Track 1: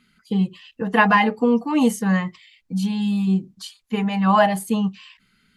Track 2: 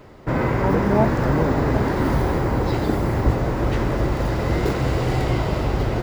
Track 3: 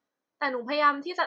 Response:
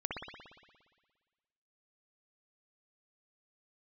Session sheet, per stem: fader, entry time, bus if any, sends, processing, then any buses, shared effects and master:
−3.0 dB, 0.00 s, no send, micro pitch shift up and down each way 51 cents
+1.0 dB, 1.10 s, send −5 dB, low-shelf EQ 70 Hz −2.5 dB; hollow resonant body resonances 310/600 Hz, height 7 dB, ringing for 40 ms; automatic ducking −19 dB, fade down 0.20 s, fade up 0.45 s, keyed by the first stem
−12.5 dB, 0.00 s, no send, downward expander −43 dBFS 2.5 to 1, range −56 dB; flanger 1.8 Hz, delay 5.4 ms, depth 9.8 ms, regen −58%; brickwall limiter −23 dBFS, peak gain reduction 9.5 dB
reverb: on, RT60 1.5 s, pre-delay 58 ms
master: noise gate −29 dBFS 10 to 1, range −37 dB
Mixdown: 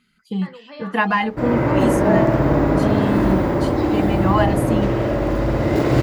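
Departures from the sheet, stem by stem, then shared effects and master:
stem 1: missing micro pitch shift up and down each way 51 cents
stem 3 −12.5 dB → −6.0 dB
master: missing noise gate −29 dBFS 10 to 1, range −37 dB

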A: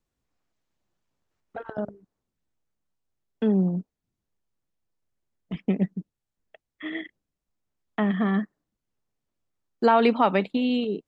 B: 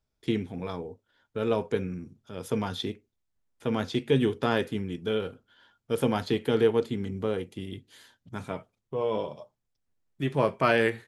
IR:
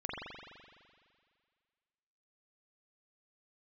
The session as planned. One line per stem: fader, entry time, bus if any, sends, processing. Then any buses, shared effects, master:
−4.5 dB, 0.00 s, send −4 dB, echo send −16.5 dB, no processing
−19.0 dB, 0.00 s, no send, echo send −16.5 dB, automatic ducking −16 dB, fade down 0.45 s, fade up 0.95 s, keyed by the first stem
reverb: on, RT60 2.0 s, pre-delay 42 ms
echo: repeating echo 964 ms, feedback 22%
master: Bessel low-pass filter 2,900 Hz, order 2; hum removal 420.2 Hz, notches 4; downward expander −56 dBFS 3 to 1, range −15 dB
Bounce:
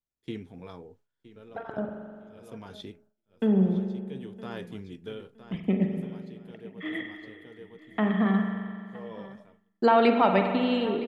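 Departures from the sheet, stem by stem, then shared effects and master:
stem B −19.0 dB → −9.0 dB
master: missing Bessel low-pass filter 2,900 Hz, order 2

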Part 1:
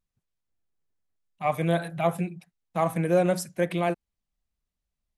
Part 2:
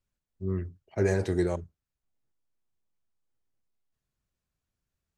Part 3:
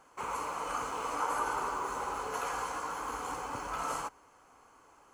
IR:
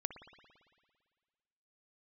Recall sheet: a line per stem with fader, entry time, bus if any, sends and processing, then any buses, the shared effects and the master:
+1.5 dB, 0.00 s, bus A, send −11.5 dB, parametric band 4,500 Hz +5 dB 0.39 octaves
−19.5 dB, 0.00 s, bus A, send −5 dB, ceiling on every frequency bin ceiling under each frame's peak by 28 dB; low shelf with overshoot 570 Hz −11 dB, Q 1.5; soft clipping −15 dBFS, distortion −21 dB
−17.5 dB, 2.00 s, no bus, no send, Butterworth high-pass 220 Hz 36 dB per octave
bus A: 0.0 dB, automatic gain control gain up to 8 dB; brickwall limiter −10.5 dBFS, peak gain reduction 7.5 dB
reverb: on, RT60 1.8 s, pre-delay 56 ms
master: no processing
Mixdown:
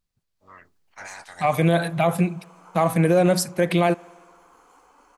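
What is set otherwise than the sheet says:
stem 2: send off
stem 3: entry 2.00 s → 1.45 s

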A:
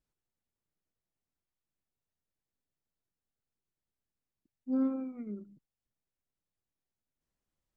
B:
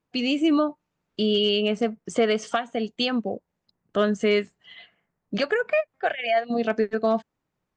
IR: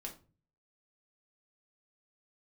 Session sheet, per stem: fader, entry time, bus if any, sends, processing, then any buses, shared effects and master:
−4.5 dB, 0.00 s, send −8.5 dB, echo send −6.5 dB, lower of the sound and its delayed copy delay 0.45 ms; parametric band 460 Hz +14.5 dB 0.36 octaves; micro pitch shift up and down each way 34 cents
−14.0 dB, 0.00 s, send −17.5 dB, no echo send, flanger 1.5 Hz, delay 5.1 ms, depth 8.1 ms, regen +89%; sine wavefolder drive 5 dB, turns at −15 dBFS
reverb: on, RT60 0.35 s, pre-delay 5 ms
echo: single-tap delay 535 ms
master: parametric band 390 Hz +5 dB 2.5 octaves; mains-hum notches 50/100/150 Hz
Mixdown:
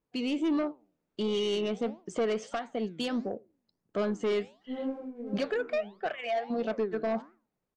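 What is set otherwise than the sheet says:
stem A: send off
master: missing mains-hum notches 50/100/150 Hz

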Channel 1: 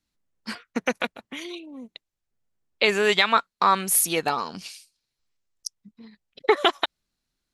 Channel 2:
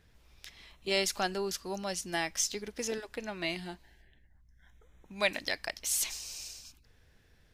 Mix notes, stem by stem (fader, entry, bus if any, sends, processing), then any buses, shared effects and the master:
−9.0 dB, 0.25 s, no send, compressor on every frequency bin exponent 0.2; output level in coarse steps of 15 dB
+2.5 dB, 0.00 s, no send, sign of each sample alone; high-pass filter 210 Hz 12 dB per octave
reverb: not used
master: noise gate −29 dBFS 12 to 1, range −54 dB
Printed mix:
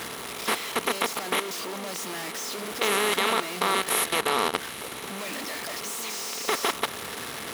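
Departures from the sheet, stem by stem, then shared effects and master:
stem 1: entry 0.25 s → 0.00 s
master: missing noise gate −29 dBFS 12 to 1, range −54 dB

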